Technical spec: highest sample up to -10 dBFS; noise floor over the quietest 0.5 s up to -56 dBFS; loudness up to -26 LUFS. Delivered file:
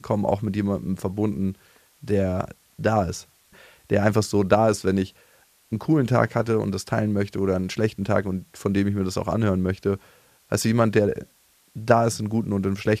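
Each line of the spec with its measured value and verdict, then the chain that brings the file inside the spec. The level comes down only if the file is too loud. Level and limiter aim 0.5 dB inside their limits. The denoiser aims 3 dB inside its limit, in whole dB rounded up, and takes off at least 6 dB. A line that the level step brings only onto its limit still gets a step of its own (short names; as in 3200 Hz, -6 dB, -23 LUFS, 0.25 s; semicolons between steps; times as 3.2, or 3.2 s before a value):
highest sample -4.0 dBFS: fail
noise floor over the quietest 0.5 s -59 dBFS: OK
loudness -23.5 LUFS: fail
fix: gain -3 dB; limiter -10.5 dBFS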